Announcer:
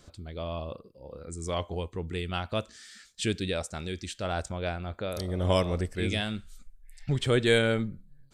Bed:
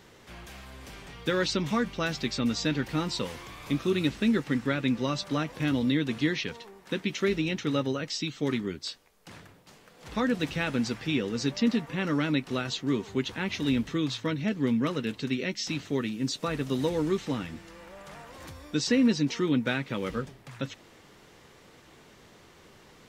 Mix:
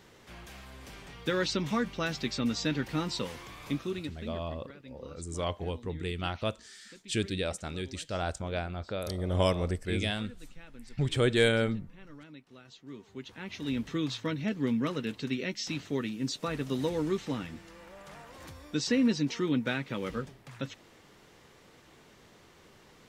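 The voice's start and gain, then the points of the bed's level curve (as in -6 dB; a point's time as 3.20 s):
3.90 s, -1.5 dB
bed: 3.67 s -2.5 dB
4.51 s -23 dB
12.55 s -23 dB
13.95 s -3 dB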